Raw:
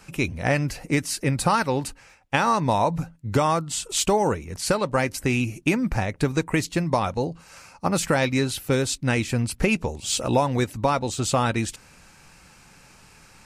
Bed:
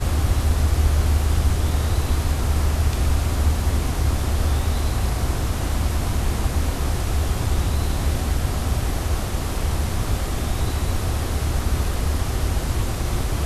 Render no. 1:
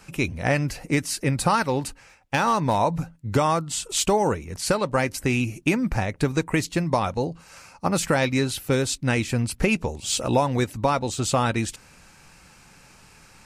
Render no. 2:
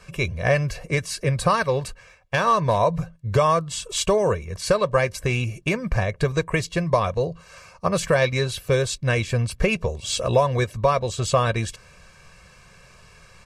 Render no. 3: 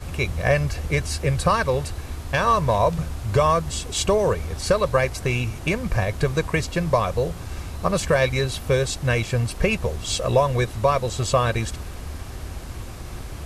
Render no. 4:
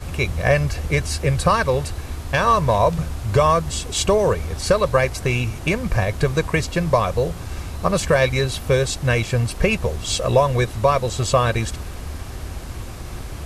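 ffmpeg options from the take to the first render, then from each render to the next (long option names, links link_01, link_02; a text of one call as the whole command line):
ffmpeg -i in.wav -filter_complex "[0:a]asettb=1/sr,asplit=3[link_01][link_02][link_03];[link_01]atrim=end=1.634[link_04];[link_02]atrim=start=1.63:end=2.77,asetpts=PTS-STARTPTS,afade=type=in:duration=0.004:curve=qsin,afade=type=out:start_time=1.136:duration=0.004:curve=qsin,asoftclip=type=hard:threshold=-14dB[link_05];[link_03]atrim=start=2.766[link_06];[link_04][link_05]acrossfade=duration=0.004:curve1=hsin:curve2=qsin[link_07];[link_07][link_06]acrossfade=duration=0.004:curve1=qsin:curve2=hsin" out.wav
ffmpeg -i in.wav -af "highshelf=frequency=8500:gain=-11.5,aecho=1:1:1.8:0.8" out.wav
ffmpeg -i in.wav -i bed.wav -filter_complex "[1:a]volume=-11.5dB[link_01];[0:a][link_01]amix=inputs=2:normalize=0" out.wav
ffmpeg -i in.wav -af "volume=2.5dB" out.wav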